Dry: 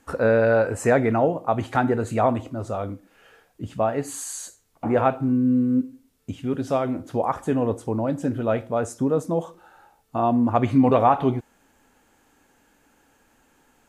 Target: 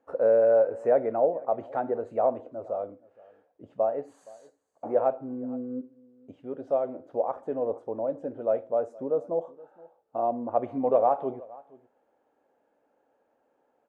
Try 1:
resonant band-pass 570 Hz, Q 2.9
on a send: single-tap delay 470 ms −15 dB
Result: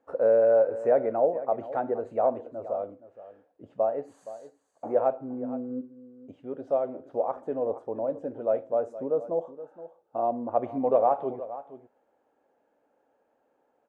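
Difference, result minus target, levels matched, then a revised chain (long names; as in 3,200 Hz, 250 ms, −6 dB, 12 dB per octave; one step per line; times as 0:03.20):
echo-to-direct +7.5 dB
resonant band-pass 570 Hz, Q 2.9
on a send: single-tap delay 470 ms −22.5 dB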